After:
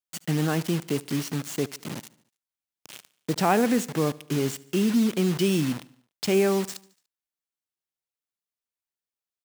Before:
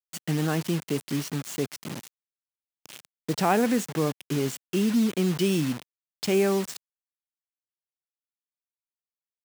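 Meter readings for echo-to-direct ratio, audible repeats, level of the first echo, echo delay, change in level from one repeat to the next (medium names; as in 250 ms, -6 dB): -20.5 dB, 3, -22.0 dB, 73 ms, -5.0 dB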